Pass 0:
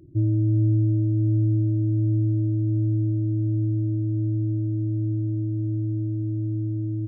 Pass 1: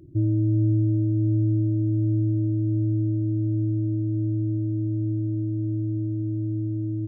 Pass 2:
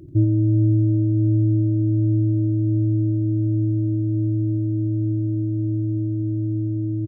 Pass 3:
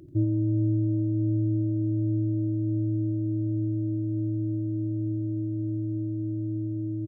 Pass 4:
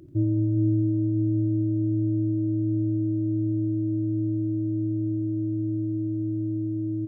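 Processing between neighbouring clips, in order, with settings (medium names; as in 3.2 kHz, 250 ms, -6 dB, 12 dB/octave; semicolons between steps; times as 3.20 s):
dynamic bell 120 Hz, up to -4 dB, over -35 dBFS, Q 4; trim +1.5 dB
delay 86 ms -12 dB; trim +6 dB
bass shelf 310 Hz -7.5 dB; trim -1.5 dB
reverberation RT60 5.0 s, pre-delay 20 ms, DRR 7 dB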